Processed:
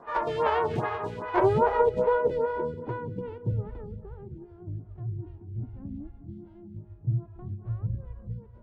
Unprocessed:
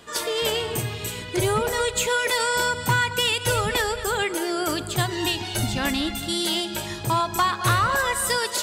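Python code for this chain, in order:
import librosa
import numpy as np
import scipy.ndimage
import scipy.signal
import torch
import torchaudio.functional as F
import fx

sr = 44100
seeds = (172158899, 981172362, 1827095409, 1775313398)

p1 = fx.envelope_flatten(x, sr, power=0.3)
p2 = fx.filter_sweep_lowpass(p1, sr, from_hz=990.0, to_hz=110.0, start_s=1.29, end_s=4.46, q=1.7)
p3 = p2 + fx.echo_feedback(p2, sr, ms=187, feedback_pct=54, wet_db=-17.0, dry=0)
p4 = fx.stagger_phaser(p3, sr, hz=2.5)
y = p4 * librosa.db_to_amplitude(5.5)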